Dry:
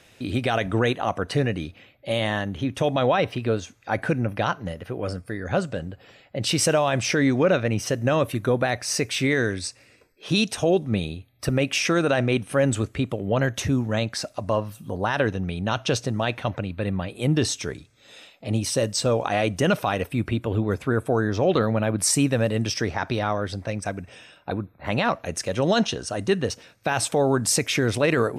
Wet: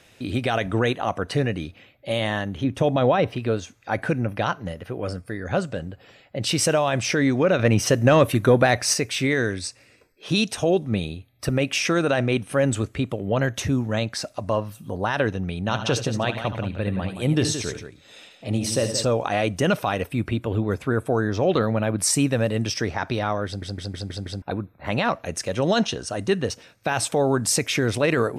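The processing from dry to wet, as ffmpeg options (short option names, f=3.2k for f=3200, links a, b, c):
-filter_complex "[0:a]asettb=1/sr,asplit=3[a][b][c];[a]atrim=end=2.644[d];[b]atrim=start=2.64:end=3.36,asetpts=PTS-STARTPTS,afade=t=in:d=0.004:c=qsin,afade=t=out:st=0.716:d=0.004:c=qsin,tiltshelf=f=970:g=3.5[e];[c]atrim=start=3.356[f];[d][e]acrossfade=d=0.004:c1=hsin:c2=qsin[g];[g][f]acrossfade=d=0.004:c1=qsin:c2=hsin,asettb=1/sr,asplit=3[h][i][j];[h]atrim=end=7.594[k];[i]atrim=start=7.59:end=8.94,asetpts=PTS-STARTPTS,afade=t=in:d=0.004:c=qsin,afade=t=out:st=1.346:d=0.004:c=qsin,acontrast=51[l];[j]atrim=start=8.936[m];[k][l]acrossfade=d=0.004:c1=hsin:c2=qsin[n];[n][m]acrossfade=d=0.004:c1=qsin:c2=hsin,asettb=1/sr,asplit=3[o][p][q];[o]atrim=end=15.604[r];[p]atrim=start=15.6:end=19.05,asetpts=PTS-STARTPTS,afade=t=in:d=0.004:c=qsin,afade=t=out:st=3.446:d=0.004:c=qsin,aecho=1:1:69|78|173:0.211|0.237|0.335,atrim=end_sample=152145[s];[q]atrim=start=19.046[t];[r][s]acrossfade=d=0.004:c1=hsin:c2=qsin[u];[u][t]acrossfade=d=0.004:c1=qsin:c2=hsin,asplit=7[v][w][x][y][z][aa][ab];[v]atrim=end=23.622[ac];[w]atrim=start=23.458:end=23.622[ad];[x]atrim=start=23.458:end=23.622[ae];[y]atrim=start=23.458:end=23.622[af];[z]atrim=start=23.458:end=23.622[ag];[aa]atrim=start=23.458:end=23.622[ah];[ab]atrim=start=24.418[ai];[ac][ad]acrossfade=d=0.004:c1=hsin:c2=hsin[aj];[aj][ae]acrossfade=d=0.004:c1=hsin:c2=hsin[ak];[ak][af]acrossfade=d=0.004:c1=hsin:c2=hsin[al];[al][ag]acrossfade=d=0.004:c1=hsin:c2=hsin[am];[am][ah]acrossfade=d=0.004:c1=hsin:c2=hsin[an];[an][ai]acrossfade=d=0.004:c1=hsin:c2=hsin"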